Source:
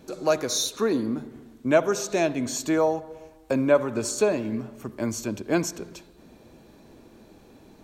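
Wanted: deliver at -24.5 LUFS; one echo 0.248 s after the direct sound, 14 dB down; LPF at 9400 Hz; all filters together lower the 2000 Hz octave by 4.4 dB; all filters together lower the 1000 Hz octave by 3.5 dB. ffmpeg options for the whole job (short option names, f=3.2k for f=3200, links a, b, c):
-af "lowpass=9.4k,equalizer=f=1k:t=o:g=-4,equalizer=f=2k:t=o:g=-4.5,aecho=1:1:248:0.2,volume=2dB"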